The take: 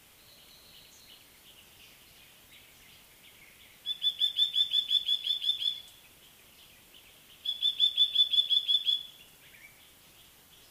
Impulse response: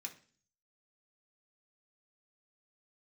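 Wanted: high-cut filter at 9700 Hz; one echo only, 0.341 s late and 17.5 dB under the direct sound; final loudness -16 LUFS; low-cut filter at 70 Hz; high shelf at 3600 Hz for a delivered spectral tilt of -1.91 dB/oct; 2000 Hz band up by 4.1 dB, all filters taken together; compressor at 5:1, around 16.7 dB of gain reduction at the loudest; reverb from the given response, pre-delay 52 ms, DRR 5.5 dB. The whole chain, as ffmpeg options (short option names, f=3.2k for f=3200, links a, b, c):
-filter_complex "[0:a]highpass=70,lowpass=9.7k,equalizer=f=2k:t=o:g=6.5,highshelf=f=3.6k:g=-3,acompressor=threshold=-40dB:ratio=5,aecho=1:1:341:0.133,asplit=2[a][b];[1:a]atrim=start_sample=2205,adelay=52[c];[b][c]afir=irnorm=-1:irlink=0,volume=-2dB[d];[a][d]amix=inputs=2:normalize=0,volume=25.5dB"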